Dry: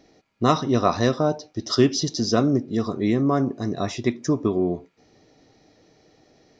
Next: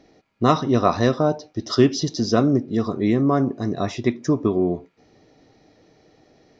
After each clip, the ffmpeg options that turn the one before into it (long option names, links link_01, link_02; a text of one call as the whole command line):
ffmpeg -i in.wav -af "highshelf=frequency=5900:gain=-9.5,volume=2dB" out.wav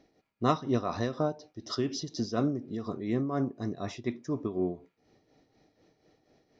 ffmpeg -i in.wav -af "tremolo=f=4.1:d=0.59,volume=-8.5dB" out.wav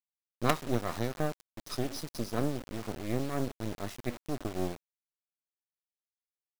ffmpeg -i in.wav -af "acrusher=bits=4:dc=4:mix=0:aa=0.000001" out.wav